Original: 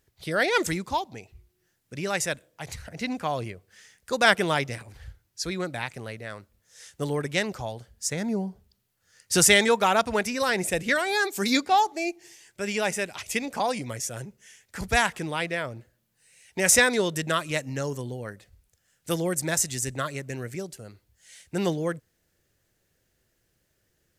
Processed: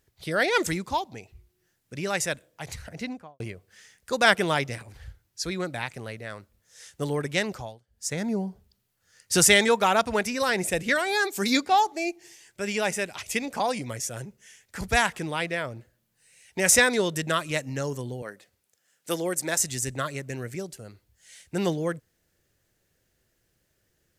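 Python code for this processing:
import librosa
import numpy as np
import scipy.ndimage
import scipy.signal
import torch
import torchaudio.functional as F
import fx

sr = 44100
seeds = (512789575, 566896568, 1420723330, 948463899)

y = fx.studio_fade_out(x, sr, start_s=2.89, length_s=0.51)
y = fx.highpass(y, sr, hz=250.0, slope=12, at=(18.22, 19.6))
y = fx.edit(y, sr, fx.fade_down_up(start_s=7.54, length_s=0.6, db=-22.0, fade_s=0.27), tone=tone)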